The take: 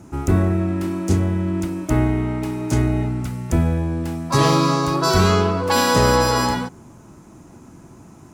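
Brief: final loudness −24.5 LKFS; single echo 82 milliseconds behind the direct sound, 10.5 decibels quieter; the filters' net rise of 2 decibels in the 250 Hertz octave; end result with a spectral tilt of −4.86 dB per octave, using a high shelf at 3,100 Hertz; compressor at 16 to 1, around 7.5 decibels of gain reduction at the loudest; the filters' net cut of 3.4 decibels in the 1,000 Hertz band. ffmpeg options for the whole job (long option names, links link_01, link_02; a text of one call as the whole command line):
ffmpeg -i in.wav -af "equalizer=frequency=250:width_type=o:gain=3,equalizer=frequency=1000:width_type=o:gain=-5,highshelf=frequency=3100:gain=7.5,acompressor=threshold=-18dB:ratio=16,aecho=1:1:82:0.299,volume=-1.5dB" out.wav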